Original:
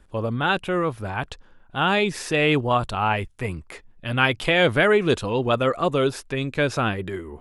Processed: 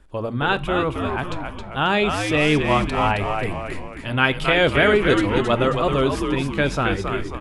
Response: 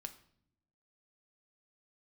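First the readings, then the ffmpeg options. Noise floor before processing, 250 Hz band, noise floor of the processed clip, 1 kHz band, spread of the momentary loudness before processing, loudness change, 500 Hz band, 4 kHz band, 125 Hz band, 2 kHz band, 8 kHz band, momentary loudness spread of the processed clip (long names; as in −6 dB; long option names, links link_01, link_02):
−53 dBFS, +3.5 dB, −34 dBFS, +2.0 dB, 13 LU, +2.0 dB, +1.5 dB, +2.0 dB, +2.0 dB, +2.0 dB, +0.5 dB, 11 LU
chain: -filter_complex "[0:a]bandreject=frequency=111.8:width_type=h:width=4,bandreject=frequency=223.6:width_type=h:width=4,bandreject=frequency=335.4:width_type=h:width=4,asplit=7[link_01][link_02][link_03][link_04][link_05][link_06][link_07];[link_02]adelay=269,afreqshift=-95,volume=-5dB[link_08];[link_03]adelay=538,afreqshift=-190,volume=-10.8dB[link_09];[link_04]adelay=807,afreqshift=-285,volume=-16.7dB[link_10];[link_05]adelay=1076,afreqshift=-380,volume=-22.5dB[link_11];[link_06]adelay=1345,afreqshift=-475,volume=-28.4dB[link_12];[link_07]adelay=1614,afreqshift=-570,volume=-34.2dB[link_13];[link_01][link_08][link_09][link_10][link_11][link_12][link_13]amix=inputs=7:normalize=0,asplit=2[link_14][link_15];[1:a]atrim=start_sample=2205,afade=type=out:start_time=0.14:duration=0.01,atrim=end_sample=6615,highshelf=frequency=9400:gain=-11.5[link_16];[link_15][link_16]afir=irnorm=-1:irlink=0,volume=3.5dB[link_17];[link_14][link_17]amix=inputs=2:normalize=0,volume=-4.5dB"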